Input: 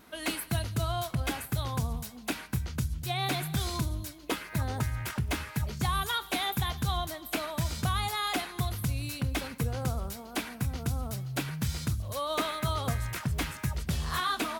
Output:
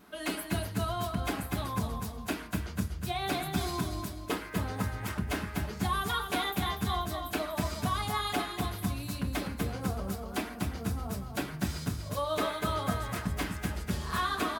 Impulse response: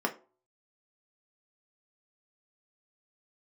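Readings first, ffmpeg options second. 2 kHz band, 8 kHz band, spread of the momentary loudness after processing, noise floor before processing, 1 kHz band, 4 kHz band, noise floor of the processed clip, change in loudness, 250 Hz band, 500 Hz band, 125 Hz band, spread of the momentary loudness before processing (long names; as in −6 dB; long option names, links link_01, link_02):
−0.5 dB, −3.0 dB, 5 LU, −47 dBFS, +0.5 dB, −2.5 dB, −42 dBFS, −1.0 dB, +2.0 dB, +1.5 dB, −3.5 dB, 5 LU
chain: -filter_complex "[0:a]aecho=1:1:243|486|729|972:0.473|0.147|0.0455|0.0141,asplit=2[link_01][link_02];[1:a]atrim=start_sample=2205,asetrate=40572,aresample=44100,adelay=7[link_03];[link_02][link_03]afir=irnorm=-1:irlink=0,volume=-7.5dB[link_04];[link_01][link_04]amix=inputs=2:normalize=0,volume=-4.5dB"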